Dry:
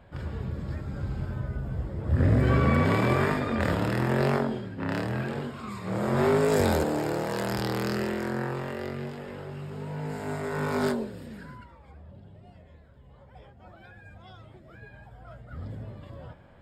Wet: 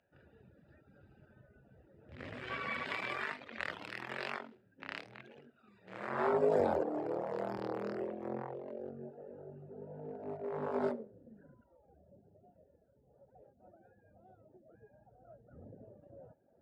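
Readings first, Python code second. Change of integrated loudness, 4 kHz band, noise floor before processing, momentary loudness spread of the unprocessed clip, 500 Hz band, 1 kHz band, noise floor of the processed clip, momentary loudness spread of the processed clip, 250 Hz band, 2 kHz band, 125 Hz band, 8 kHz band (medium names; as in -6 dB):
-10.0 dB, -11.0 dB, -53 dBFS, 19 LU, -8.0 dB, -9.0 dB, -70 dBFS, 22 LU, -15.5 dB, -9.0 dB, -24.5 dB, under -20 dB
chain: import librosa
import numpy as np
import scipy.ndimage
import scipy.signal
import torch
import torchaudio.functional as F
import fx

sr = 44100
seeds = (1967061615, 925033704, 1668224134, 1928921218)

y = fx.wiener(x, sr, points=41)
y = fx.room_flutter(y, sr, wall_m=11.9, rt60_s=0.28)
y = fx.filter_sweep_bandpass(y, sr, from_hz=2700.0, to_hz=630.0, start_s=5.87, end_s=6.48, q=1.2)
y = fx.dereverb_blind(y, sr, rt60_s=0.86)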